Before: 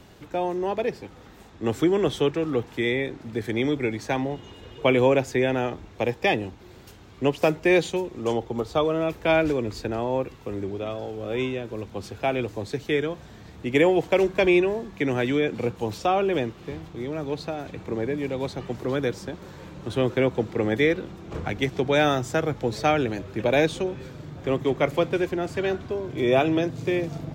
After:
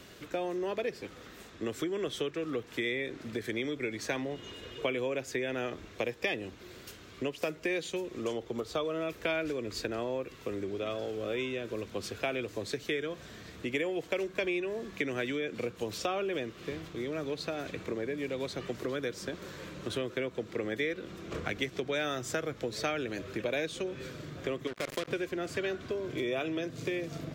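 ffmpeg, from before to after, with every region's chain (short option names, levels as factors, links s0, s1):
-filter_complex "[0:a]asettb=1/sr,asplit=3[s0][s1][s2];[s0]atrim=end=24.674[s3];[s1]atrim=start=24.67:end=25.08,asetpts=PTS-STARTPTS,afade=t=in:d=0.004:c=qsin,afade=t=out:st=0.406:d=0.004:c=qsin,acompressor=threshold=0.0562:ratio=10:attack=3.2:release=140:knee=1:detection=peak,acrusher=bits=4:mix=0:aa=0.5[s4];[s2]atrim=start=25.076[s5];[s3][s4]acrossfade=d=0.004:c1=hsin:c2=qsin[s6];[s6][s5]acrossfade=d=0.004:c1=qsin:c2=hsin,equalizer=f=840:t=o:w=0.46:g=-12,acompressor=threshold=0.0316:ratio=6,lowshelf=f=260:g=-11.5,volume=1.41"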